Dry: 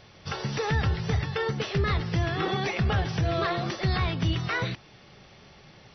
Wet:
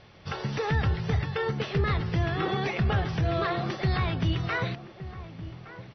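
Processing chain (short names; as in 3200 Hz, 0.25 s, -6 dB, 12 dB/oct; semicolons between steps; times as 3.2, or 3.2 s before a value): air absorption 130 m; outdoor echo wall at 200 m, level -13 dB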